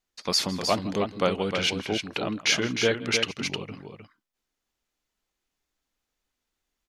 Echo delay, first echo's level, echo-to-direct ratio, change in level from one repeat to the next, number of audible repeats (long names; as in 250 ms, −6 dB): 161 ms, −19.5 dB, −6.5 dB, repeats not evenly spaced, 2